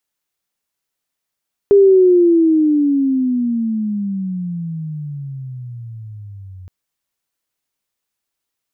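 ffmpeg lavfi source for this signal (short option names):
-f lavfi -i "aevalsrc='pow(10,(-5-27.5*t/4.97)/20)*sin(2*PI*406*4.97/(-26*log(2)/12)*(exp(-26*log(2)/12*t/4.97)-1))':d=4.97:s=44100"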